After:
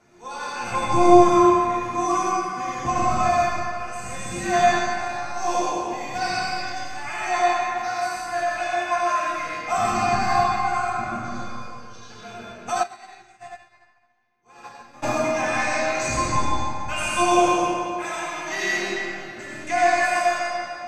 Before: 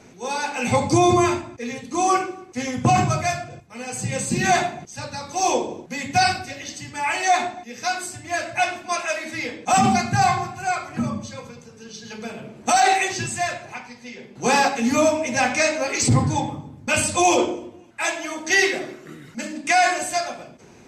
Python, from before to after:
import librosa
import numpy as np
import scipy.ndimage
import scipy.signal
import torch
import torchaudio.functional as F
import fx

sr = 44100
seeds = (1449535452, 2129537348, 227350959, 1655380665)

y = fx.octave_divider(x, sr, octaves=1, level_db=-3.0)
y = fx.high_shelf(y, sr, hz=10000.0, db=3.5)
y = fx.comb_fb(y, sr, f0_hz=350.0, decay_s=0.56, harmonics='all', damping=0.0, mix_pct=90)
y = fx.rev_freeverb(y, sr, rt60_s=2.3, hf_ratio=0.85, predelay_ms=40, drr_db=-6.0)
y = fx.chorus_voices(y, sr, voices=2, hz=0.16, base_ms=29, depth_ms=4.1, mix_pct=25)
y = fx.peak_eq(y, sr, hz=1200.0, db=9.5, octaves=1.3)
y = fx.echo_wet_bandpass(y, sr, ms=147, feedback_pct=61, hz=1100.0, wet_db=-9.0)
y = fx.upward_expand(y, sr, threshold_db=-36.0, expansion=2.5, at=(12.82, 15.02), fade=0.02)
y = F.gain(torch.from_numpy(y), 4.5).numpy()